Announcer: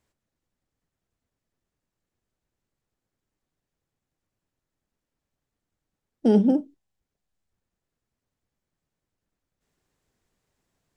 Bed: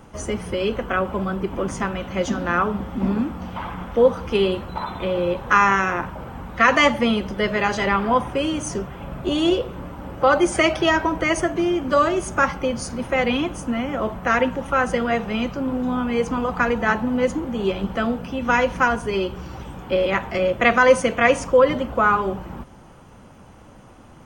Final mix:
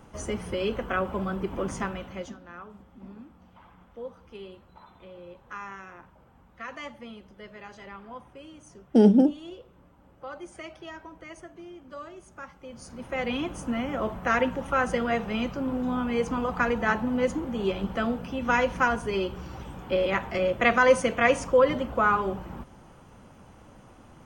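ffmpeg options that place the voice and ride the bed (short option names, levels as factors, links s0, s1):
-filter_complex "[0:a]adelay=2700,volume=1.19[s0];[1:a]volume=4.47,afade=t=out:st=1.78:d=0.61:silence=0.125893,afade=t=in:st=12.61:d=1.11:silence=0.11885[s1];[s0][s1]amix=inputs=2:normalize=0"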